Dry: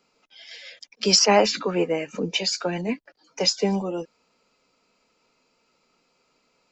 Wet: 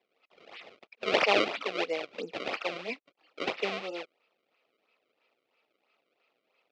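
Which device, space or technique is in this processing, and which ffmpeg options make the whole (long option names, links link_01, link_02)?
circuit-bent sampling toy: -af "acrusher=samples=29:mix=1:aa=0.000001:lfo=1:lforange=46.4:lforate=3,highpass=550,equalizer=frequency=950:width_type=q:width=4:gain=-7,equalizer=frequency=1600:width_type=q:width=4:gain=-8,equalizer=frequency=2500:width_type=q:width=4:gain=6,lowpass=frequency=4400:width=0.5412,lowpass=frequency=4400:width=1.3066,volume=-3dB"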